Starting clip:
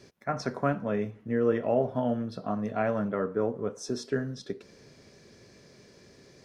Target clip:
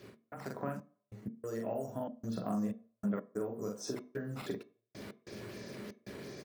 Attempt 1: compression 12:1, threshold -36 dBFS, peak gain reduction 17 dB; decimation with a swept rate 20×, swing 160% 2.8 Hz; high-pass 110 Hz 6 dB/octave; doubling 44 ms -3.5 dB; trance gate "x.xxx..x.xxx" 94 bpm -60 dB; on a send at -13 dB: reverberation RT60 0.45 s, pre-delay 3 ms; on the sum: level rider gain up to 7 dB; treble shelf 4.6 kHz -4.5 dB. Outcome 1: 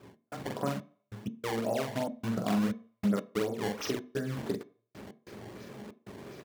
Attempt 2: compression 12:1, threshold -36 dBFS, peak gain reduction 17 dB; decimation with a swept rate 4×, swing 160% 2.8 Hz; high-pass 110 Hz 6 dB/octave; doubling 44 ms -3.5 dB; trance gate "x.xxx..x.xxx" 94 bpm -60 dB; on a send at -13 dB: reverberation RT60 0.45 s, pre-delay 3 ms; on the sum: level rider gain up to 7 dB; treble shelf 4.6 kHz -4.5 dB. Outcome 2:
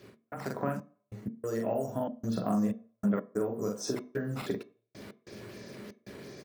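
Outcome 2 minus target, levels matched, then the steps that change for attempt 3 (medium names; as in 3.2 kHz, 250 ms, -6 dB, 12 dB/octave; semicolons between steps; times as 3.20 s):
compression: peak gain reduction -6 dB
change: compression 12:1, threshold -42.5 dBFS, peak gain reduction 23 dB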